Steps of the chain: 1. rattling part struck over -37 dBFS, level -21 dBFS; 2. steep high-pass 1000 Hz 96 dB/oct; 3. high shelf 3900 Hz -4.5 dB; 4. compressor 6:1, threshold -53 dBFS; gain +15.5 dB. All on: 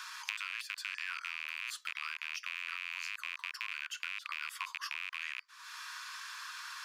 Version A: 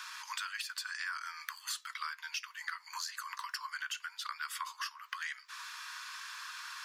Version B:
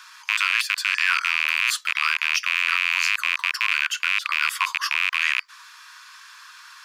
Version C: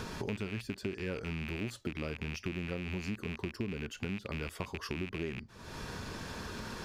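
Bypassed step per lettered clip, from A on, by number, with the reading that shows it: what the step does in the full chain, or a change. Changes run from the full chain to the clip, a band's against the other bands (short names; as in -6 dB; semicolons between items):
1, 2 kHz band -6.5 dB; 4, mean gain reduction 13.5 dB; 2, 1 kHz band +3.5 dB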